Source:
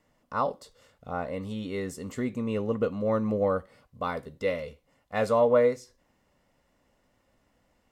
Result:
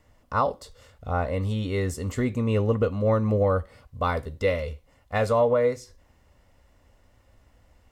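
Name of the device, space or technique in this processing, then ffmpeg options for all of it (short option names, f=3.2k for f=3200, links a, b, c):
car stereo with a boomy subwoofer: -af "lowshelf=f=120:t=q:w=1.5:g=9.5,alimiter=limit=-18dB:level=0:latency=1:release=356,volume=5.5dB"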